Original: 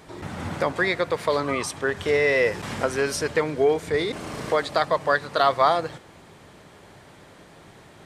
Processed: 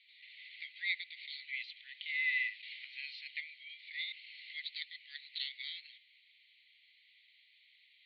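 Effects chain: Chebyshev band-pass 2–4.4 kHz, order 5; trim -6.5 dB

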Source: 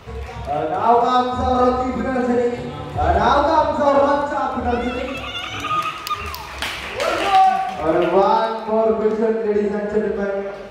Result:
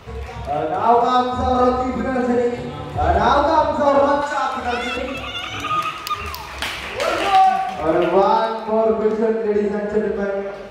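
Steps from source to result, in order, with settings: 4.22–4.97 s: tilt shelf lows -8.5 dB, about 850 Hz

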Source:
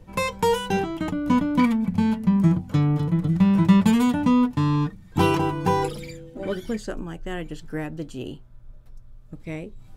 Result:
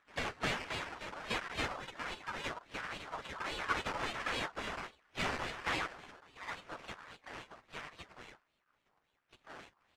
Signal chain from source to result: bit-reversed sample order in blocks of 16 samples; ladder band-pass 3.9 kHz, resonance 20%; decimation with a swept rate 13×, swing 60% 3.6 Hz; harmony voices -4 st -3 dB, +7 st -12 dB; distance through air 83 m; ring modulator with a swept carrier 1.2 kHz, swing 25%, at 1.4 Hz; trim +10 dB

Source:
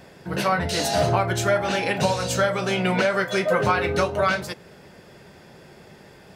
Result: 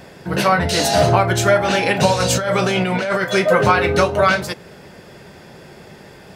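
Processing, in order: 2.20–3.24 s: compressor with a negative ratio -25 dBFS, ratio -1; trim +6.5 dB

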